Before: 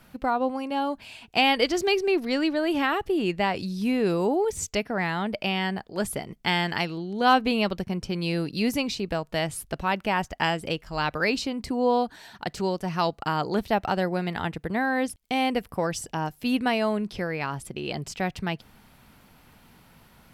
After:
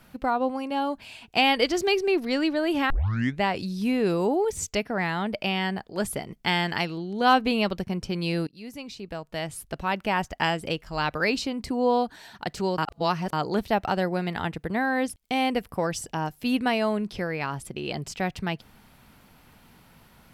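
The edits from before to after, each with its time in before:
2.9 tape start 0.51 s
8.47–10.15 fade in, from -23.5 dB
12.78–13.33 reverse

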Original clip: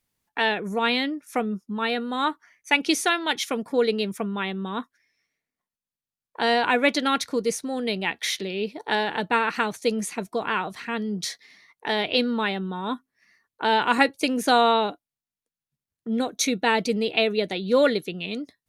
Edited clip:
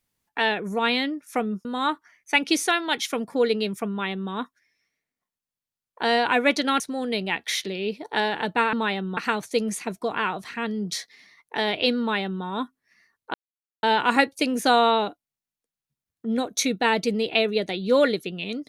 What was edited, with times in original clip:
1.65–2.03 cut
7.18–7.55 cut
12.31–12.75 copy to 9.48
13.65 insert silence 0.49 s

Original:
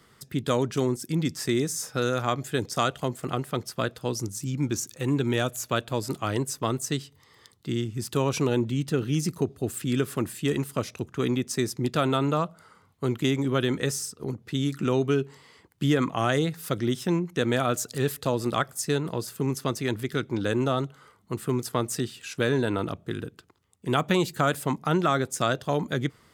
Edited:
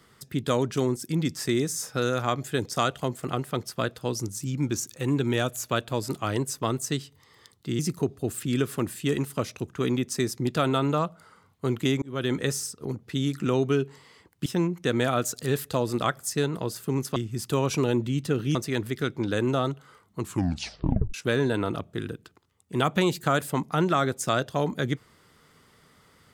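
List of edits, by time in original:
7.79–9.18 move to 19.68
13.41–13.71 fade in linear
15.85–16.98 cut
21.32 tape stop 0.95 s

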